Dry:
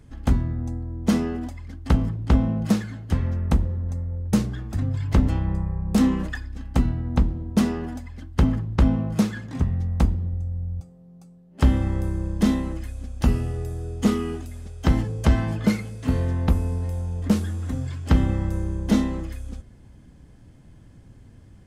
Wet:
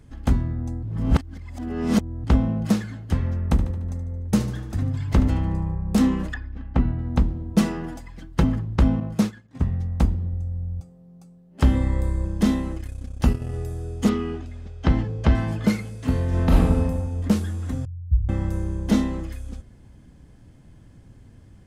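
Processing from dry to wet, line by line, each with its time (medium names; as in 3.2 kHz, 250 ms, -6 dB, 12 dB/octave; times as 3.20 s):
0.83–2.24 s: reverse
3.45–5.75 s: feedback delay 74 ms, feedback 56%, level -12.5 dB
6.34–6.99 s: low-pass 2.4 kHz
7.53–8.43 s: comb 6 ms, depth 62%
9.00–10.09 s: expander -24 dBFS
11.75–12.25 s: rippled EQ curve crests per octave 1, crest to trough 9 dB
12.75–13.53 s: transient shaper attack +1 dB, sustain -11 dB
14.09–15.35 s: low-pass 4.2 kHz
16.28–16.78 s: reverb throw, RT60 1.2 s, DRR -6 dB
17.85–18.29 s: inverse Chebyshev band-stop 520–7400 Hz, stop band 80 dB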